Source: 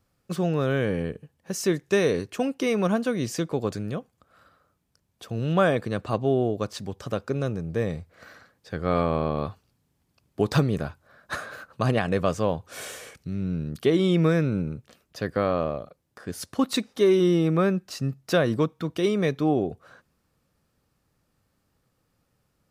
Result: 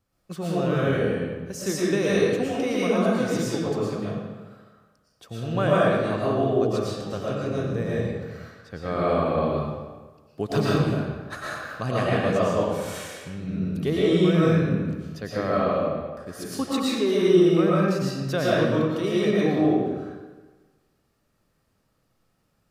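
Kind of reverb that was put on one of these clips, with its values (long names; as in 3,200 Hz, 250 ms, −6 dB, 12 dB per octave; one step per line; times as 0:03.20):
comb and all-pass reverb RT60 1.3 s, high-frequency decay 0.8×, pre-delay 75 ms, DRR −7 dB
level −5.5 dB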